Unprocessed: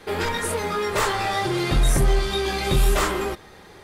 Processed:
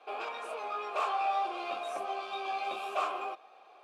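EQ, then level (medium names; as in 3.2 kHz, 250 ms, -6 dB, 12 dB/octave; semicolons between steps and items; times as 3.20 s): vowel filter a; high-pass 230 Hz 24 dB/octave; bass shelf 460 Hz -8 dB; +3.5 dB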